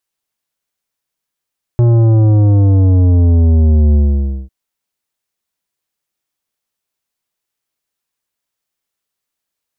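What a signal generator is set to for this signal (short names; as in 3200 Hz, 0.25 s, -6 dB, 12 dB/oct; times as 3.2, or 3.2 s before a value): sub drop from 120 Hz, over 2.70 s, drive 11 dB, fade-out 0.54 s, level -7.5 dB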